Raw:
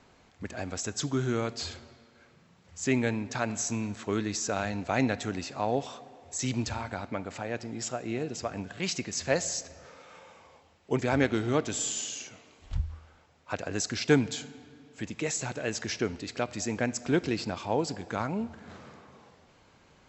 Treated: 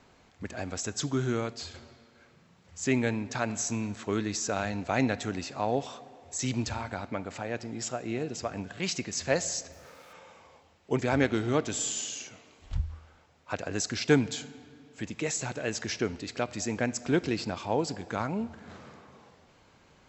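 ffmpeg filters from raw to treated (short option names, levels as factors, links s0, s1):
-filter_complex "[0:a]asplit=3[s0][s1][s2];[s0]afade=t=out:st=9.71:d=0.02[s3];[s1]aeval=exprs='val(0)*gte(abs(val(0)),0.00168)':c=same,afade=t=in:st=9.71:d=0.02,afade=t=out:st=10.12:d=0.02[s4];[s2]afade=t=in:st=10.12:d=0.02[s5];[s3][s4][s5]amix=inputs=3:normalize=0,asplit=2[s6][s7];[s6]atrim=end=1.74,asetpts=PTS-STARTPTS,afade=t=out:st=1.31:d=0.43:silence=0.473151[s8];[s7]atrim=start=1.74,asetpts=PTS-STARTPTS,afade=t=in:d=0.004:c=hsin:silence=0.473151[s9];[s8][s9]concat=n=2:v=0:a=1"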